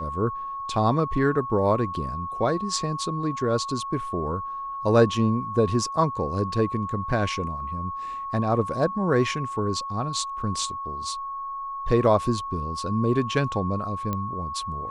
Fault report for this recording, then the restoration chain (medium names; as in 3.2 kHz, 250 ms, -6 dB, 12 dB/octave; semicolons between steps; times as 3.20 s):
whine 1.1 kHz -30 dBFS
14.13 s: pop -15 dBFS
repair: de-click; band-stop 1.1 kHz, Q 30